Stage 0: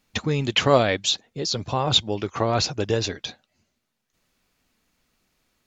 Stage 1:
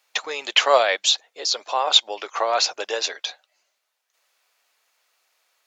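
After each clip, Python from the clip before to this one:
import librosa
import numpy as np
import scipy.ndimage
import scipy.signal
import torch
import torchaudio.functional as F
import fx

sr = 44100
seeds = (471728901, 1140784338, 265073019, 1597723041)

y = scipy.signal.sosfilt(scipy.signal.butter(4, 570.0, 'highpass', fs=sr, output='sos'), x)
y = F.gain(torch.from_numpy(y), 4.0).numpy()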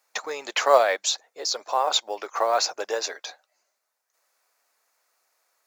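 y = fx.peak_eq(x, sr, hz=3100.0, db=-12.0, octaves=0.91)
y = fx.quant_float(y, sr, bits=4)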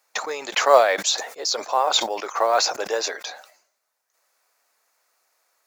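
y = fx.sustainer(x, sr, db_per_s=97.0)
y = F.gain(torch.from_numpy(y), 2.5).numpy()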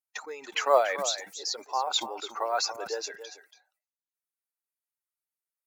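y = fx.bin_expand(x, sr, power=1.5)
y = y + 10.0 ** (-12.0 / 20.0) * np.pad(y, (int(282 * sr / 1000.0), 0))[:len(y)]
y = F.gain(torch.from_numpy(y), -6.0).numpy()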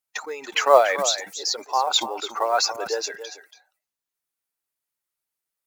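y = fx.quant_float(x, sr, bits=4)
y = F.gain(torch.from_numpy(y), 7.0).numpy()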